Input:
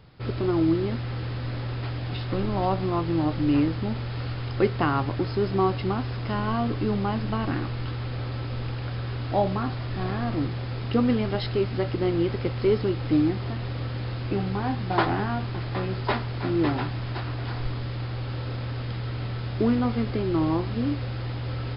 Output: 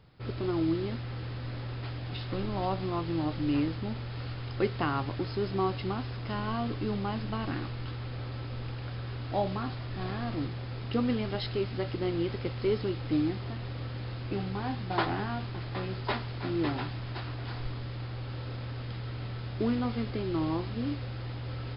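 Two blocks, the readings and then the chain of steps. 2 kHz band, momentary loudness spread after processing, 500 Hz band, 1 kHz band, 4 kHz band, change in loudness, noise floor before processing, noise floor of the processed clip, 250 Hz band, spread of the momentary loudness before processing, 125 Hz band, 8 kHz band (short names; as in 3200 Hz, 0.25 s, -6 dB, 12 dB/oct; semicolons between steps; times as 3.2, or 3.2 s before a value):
-5.0 dB, 8 LU, -6.5 dB, -6.0 dB, -3.5 dB, -6.5 dB, -32 dBFS, -38 dBFS, -6.5 dB, 8 LU, -6.5 dB, n/a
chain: dynamic EQ 4000 Hz, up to +4 dB, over -44 dBFS, Q 0.73; gain -6.5 dB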